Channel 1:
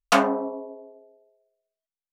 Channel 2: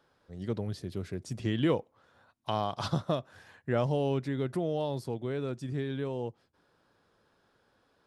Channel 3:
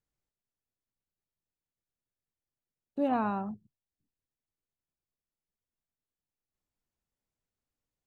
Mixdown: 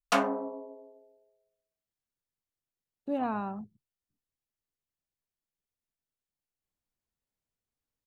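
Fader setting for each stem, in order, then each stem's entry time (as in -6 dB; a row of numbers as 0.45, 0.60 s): -7.0 dB, off, -2.5 dB; 0.00 s, off, 0.10 s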